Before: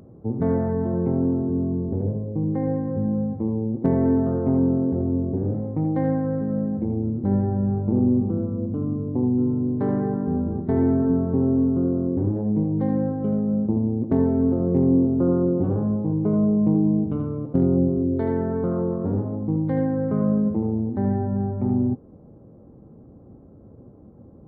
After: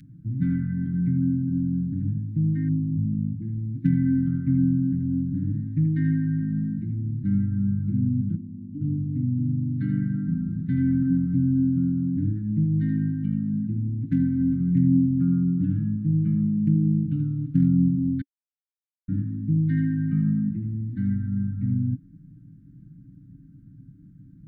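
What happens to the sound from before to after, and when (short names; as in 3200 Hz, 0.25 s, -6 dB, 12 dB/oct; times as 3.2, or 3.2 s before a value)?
2.68–3.42 formant sharpening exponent 3
8.35–8.81 vocal tract filter i
18.21–19.08 mute
whole clip: Chebyshev band-stop 280–1600 Hz, order 4; bell 410 Hz -7 dB 1.3 oct; comb 6.5 ms, depth 95%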